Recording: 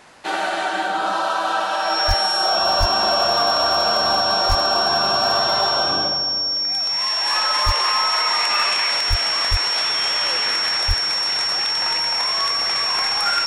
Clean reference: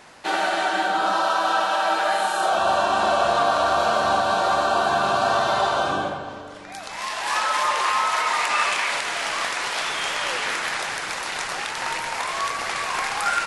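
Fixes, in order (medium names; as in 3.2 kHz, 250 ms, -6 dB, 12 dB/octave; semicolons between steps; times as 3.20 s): clip repair -10.5 dBFS; band-stop 5.5 kHz, Q 30; de-plosive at 2.07/2.79/4.48/7.65/9.09/9.50/10.87 s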